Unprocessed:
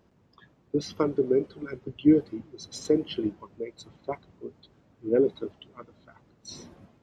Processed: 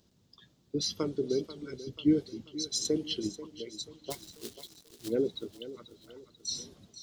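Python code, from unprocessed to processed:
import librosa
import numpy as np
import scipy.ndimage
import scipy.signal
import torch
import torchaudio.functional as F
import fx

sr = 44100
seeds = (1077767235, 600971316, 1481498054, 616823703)

y = fx.quant_companded(x, sr, bits=4, at=(4.1, 5.07), fade=0.02)
y = fx.curve_eq(y, sr, hz=(200.0, 990.0, 2400.0, 3700.0), db=(0, -7, -2, 12))
y = fx.echo_thinned(y, sr, ms=487, feedback_pct=49, hz=230.0, wet_db=-13.5)
y = F.gain(torch.from_numpy(y), -4.0).numpy()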